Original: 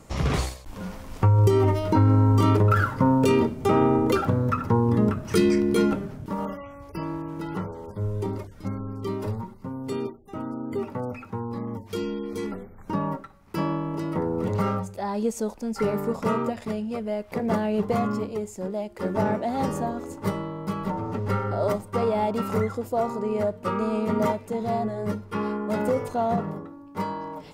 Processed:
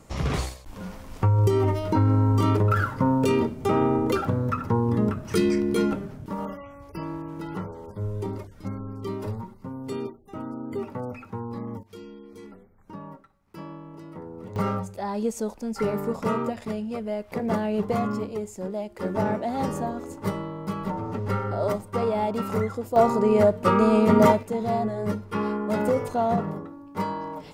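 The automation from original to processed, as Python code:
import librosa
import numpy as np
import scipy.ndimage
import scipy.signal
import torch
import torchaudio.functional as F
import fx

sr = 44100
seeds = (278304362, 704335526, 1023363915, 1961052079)

y = fx.gain(x, sr, db=fx.steps((0.0, -2.0), (11.83, -13.0), (14.56, -1.0), (22.96, 7.0), (24.43, 1.0)))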